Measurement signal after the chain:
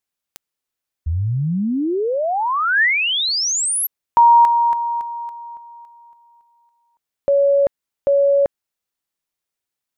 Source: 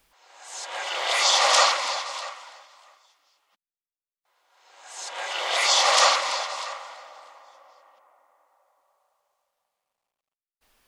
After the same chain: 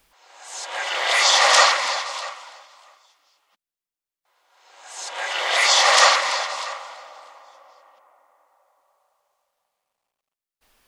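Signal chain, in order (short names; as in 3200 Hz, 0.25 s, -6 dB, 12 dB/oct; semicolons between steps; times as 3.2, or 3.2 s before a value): dynamic EQ 1800 Hz, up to +6 dB, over -41 dBFS, Q 3.1; gain +3 dB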